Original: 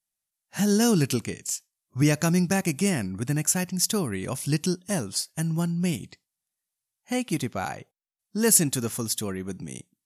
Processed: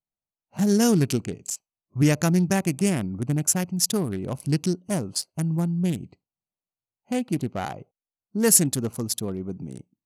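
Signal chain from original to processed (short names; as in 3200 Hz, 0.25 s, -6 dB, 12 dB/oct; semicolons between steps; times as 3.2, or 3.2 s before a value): Wiener smoothing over 25 samples; gain +2 dB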